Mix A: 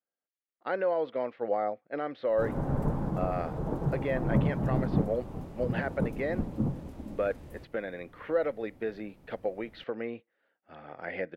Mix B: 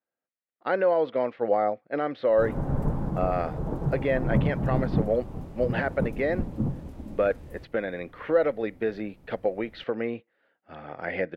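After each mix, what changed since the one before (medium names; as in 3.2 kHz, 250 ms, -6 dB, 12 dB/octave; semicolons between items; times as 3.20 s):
speech +5.5 dB; master: add bass shelf 120 Hz +5.5 dB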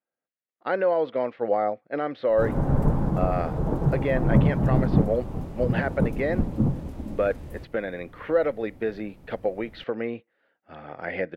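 background +5.0 dB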